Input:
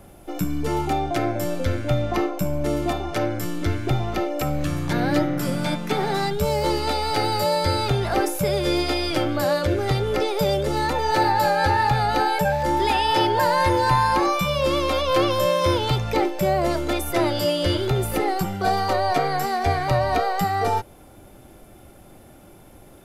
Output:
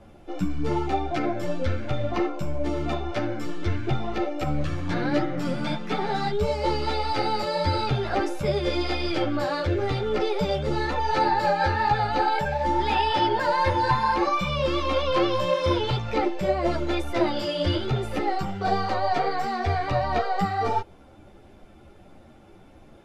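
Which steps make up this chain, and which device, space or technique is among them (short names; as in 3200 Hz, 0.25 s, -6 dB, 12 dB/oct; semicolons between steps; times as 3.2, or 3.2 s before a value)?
string-machine ensemble chorus (ensemble effect; LPF 4800 Hz 12 dB/oct)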